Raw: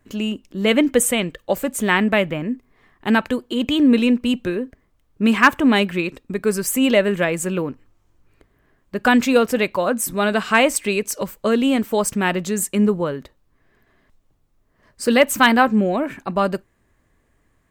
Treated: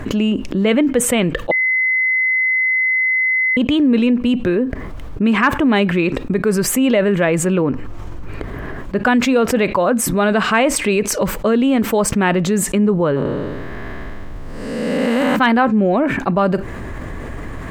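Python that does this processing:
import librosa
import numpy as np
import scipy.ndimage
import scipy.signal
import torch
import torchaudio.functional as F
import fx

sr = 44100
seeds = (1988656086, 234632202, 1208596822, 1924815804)

y = fx.spec_blur(x, sr, span_ms=401.0, at=(13.15, 15.35), fade=0.02)
y = fx.edit(y, sr, fx.bleep(start_s=1.51, length_s=2.06, hz=2040.0, db=-19.5), tone=tone)
y = fx.lowpass(y, sr, hz=2000.0, slope=6)
y = fx.env_flatten(y, sr, amount_pct=70)
y = y * librosa.db_to_amplitude(-1.5)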